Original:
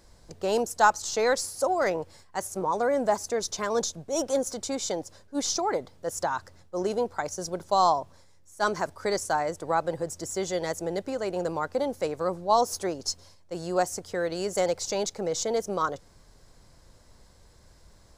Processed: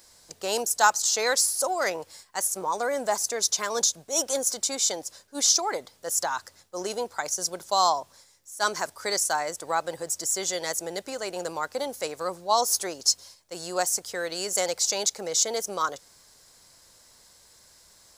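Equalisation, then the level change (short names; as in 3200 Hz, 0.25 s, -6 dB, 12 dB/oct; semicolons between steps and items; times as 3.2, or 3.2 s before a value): tilt +3.5 dB/oct; 0.0 dB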